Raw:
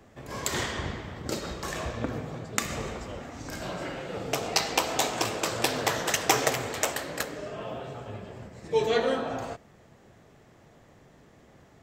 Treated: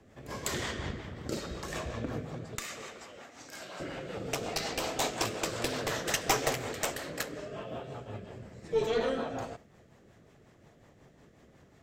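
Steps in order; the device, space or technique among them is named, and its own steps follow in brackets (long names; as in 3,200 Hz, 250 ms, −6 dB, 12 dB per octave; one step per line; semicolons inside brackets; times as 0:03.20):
0:02.55–0:03.80: high-pass filter 930 Hz 6 dB per octave
overdriven rotary cabinet (tube saturation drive 17 dB, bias 0.4; rotating-speaker cabinet horn 5.5 Hz)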